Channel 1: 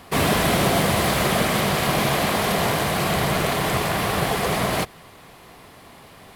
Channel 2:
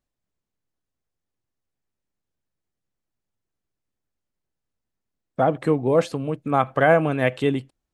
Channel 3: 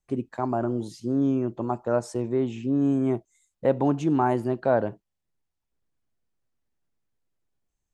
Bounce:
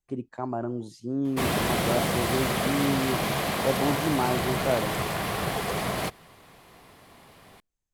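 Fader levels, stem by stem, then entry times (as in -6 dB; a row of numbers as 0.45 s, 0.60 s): -6.5 dB, mute, -4.5 dB; 1.25 s, mute, 0.00 s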